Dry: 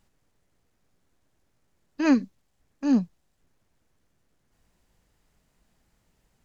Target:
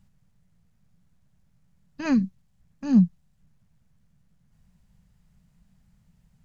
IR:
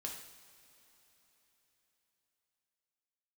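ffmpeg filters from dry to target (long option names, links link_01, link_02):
-af "lowshelf=frequency=240:width_type=q:width=3:gain=10,volume=-3dB"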